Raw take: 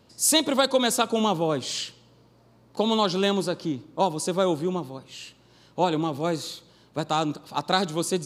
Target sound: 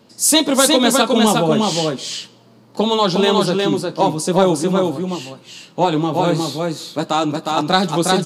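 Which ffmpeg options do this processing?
-filter_complex "[0:a]lowshelf=f=120:t=q:w=1.5:g=-9,flanger=delay=8.7:depth=5.8:regen=-38:speed=0.41:shape=triangular,asplit=2[s0][s1];[s1]aecho=0:1:360:0.708[s2];[s0][s2]amix=inputs=2:normalize=0,acontrast=84,volume=1.5"

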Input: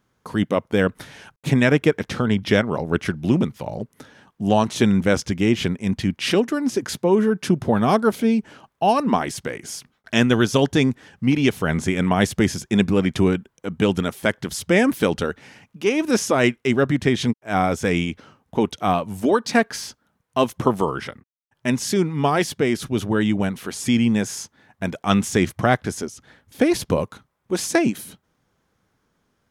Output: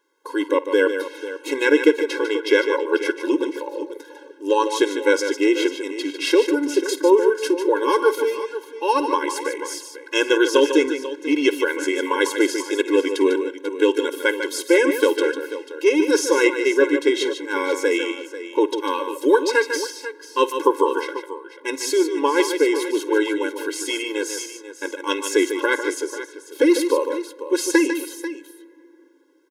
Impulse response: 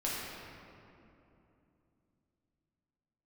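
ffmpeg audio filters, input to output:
-filter_complex "[0:a]aecho=1:1:52|149|491:0.119|0.376|0.211,asplit=2[s0][s1];[1:a]atrim=start_sample=2205,asetrate=35280,aresample=44100[s2];[s1][s2]afir=irnorm=-1:irlink=0,volume=0.0473[s3];[s0][s3]amix=inputs=2:normalize=0,afftfilt=real='re*eq(mod(floor(b*sr/1024/280),2),1)':imag='im*eq(mod(floor(b*sr/1024/280),2),1)':win_size=1024:overlap=0.75,volume=1.5"

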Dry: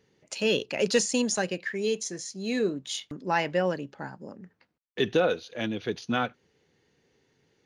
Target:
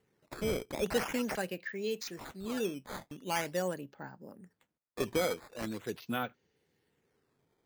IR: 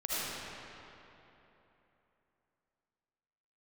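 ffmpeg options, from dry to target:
-af "acrusher=samples=9:mix=1:aa=0.000001:lfo=1:lforange=14.4:lforate=0.43,volume=0.422"

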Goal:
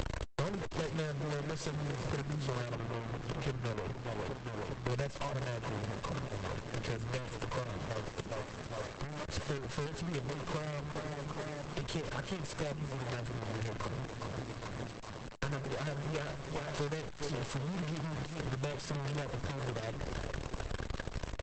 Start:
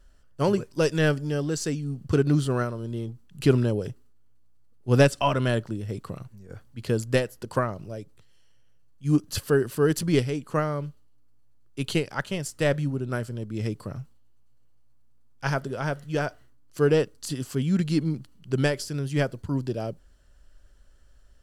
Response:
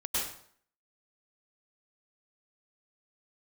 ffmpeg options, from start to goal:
-filter_complex "[0:a]aeval=exprs='val(0)+0.5*0.0841*sgn(val(0))':c=same,highpass=f=92:p=1,bass=f=250:g=-1,treble=f=4000:g=-14,aecho=1:1:1.9:0.65,aecho=1:1:409|818|1227|1636:0.168|0.0789|0.0371|0.0174,acompressor=threshold=0.00794:ratio=2.5,acrusher=bits=6:dc=4:mix=0:aa=0.000001,asettb=1/sr,asplit=3[s0][s1][s2];[s0]atrim=end=2.744[s3];[s1]atrim=start=2.74:end=4.89,asetpts=PTS-STARTPTS,afade=t=in:d=0.004:c=qsin,afade=t=out:st=2.146:d=0.004:c=qsin,aemphasis=mode=reproduction:type=cd[s4];[s2]atrim=start=4.886[s5];[s3][s4]acrossfade=d=0.004:c1=hsin:c2=qsin[s6];[s6][s5]acrossfade=d=0.004:c1=qsin:c2=hsin,asoftclip=type=tanh:threshold=0.0237,acrossover=split=250|680[s7][s8][s9];[s7]acompressor=threshold=0.00447:ratio=4[s10];[s8]acompressor=threshold=0.00158:ratio=4[s11];[s9]acompressor=threshold=0.00178:ratio=4[s12];[s10][s11][s12]amix=inputs=3:normalize=0,volume=5.31" -ar 48000 -c:a libopus -b:a 10k

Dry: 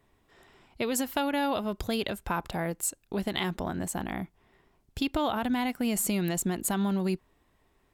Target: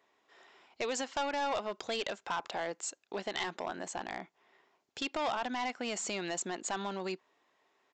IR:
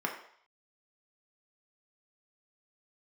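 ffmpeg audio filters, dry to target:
-af "highpass=480,aresample=16000,asoftclip=type=hard:threshold=0.0398,aresample=44100"

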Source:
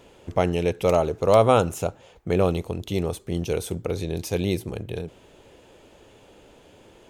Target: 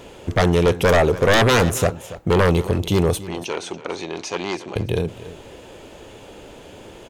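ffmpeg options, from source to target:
-filter_complex "[0:a]aeval=exprs='0.668*sin(PI/2*5.01*val(0)/0.668)':c=same,asettb=1/sr,asplit=3[s0][s1][s2];[s0]atrim=end=3.234[s3];[s1]atrim=start=3.23:end=4.76,asetpts=PTS-STARTPTS,afade=t=in:d=0.004:c=qsin,afade=t=out:st=1.526:d=0.004:c=qsin,highpass=450,equalizer=f=470:t=q:w=4:g=-10,equalizer=f=3600:t=q:w=4:g=-5,equalizer=f=5100:t=q:w=4:g=-5,lowpass=f=6000:w=0.5412,lowpass=f=6000:w=1.3066[s4];[s2]atrim=start=4.756[s5];[s3][s4]acrossfade=d=0.004:c1=hsin:c2=qsin[s6];[s6][s5]acrossfade=d=0.004:c1=qsin:c2=hsin,aecho=1:1:283:0.158,volume=0.422"

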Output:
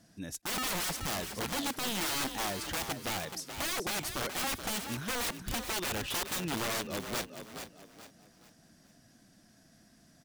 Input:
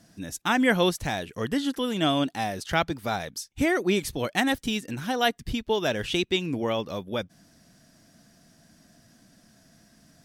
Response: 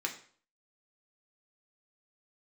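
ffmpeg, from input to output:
-filter_complex "[0:a]aeval=exprs='(mod(15*val(0)+1,2)-1)/15':c=same,asplit=5[s0][s1][s2][s3][s4];[s1]adelay=427,afreqshift=40,volume=0.376[s5];[s2]adelay=854,afreqshift=80,volume=0.127[s6];[s3]adelay=1281,afreqshift=120,volume=0.0437[s7];[s4]adelay=1708,afreqshift=160,volume=0.0148[s8];[s0][s5][s6][s7][s8]amix=inputs=5:normalize=0,volume=0.562"

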